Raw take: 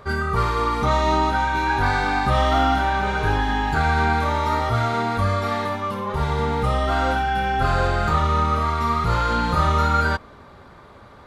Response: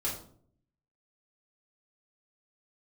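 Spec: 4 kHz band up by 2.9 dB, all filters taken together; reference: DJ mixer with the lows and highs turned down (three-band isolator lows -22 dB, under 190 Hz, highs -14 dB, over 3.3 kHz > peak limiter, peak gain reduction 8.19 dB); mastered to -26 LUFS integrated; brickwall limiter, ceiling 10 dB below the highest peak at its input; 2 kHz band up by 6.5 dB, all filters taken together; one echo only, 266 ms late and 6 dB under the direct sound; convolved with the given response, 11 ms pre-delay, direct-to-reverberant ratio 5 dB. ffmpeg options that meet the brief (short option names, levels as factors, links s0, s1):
-filter_complex "[0:a]equalizer=f=2000:t=o:g=8.5,equalizer=f=4000:t=o:g=7,alimiter=limit=0.188:level=0:latency=1,aecho=1:1:266:0.501,asplit=2[s0][s1];[1:a]atrim=start_sample=2205,adelay=11[s2];[s1][s2]afir=irnorm=-1:irlink=0,volume=0.335[s3];[s0][s3]amix=inputs=2:normalize=0,acrossover=split=190 3300:gain=0.0794 1 0.2[s4][s5][s6];[s4][s5][s6]amix=inputs=3:normalize=0,volume=1.12,alimiter=limit=0.119:level=0:latency=1"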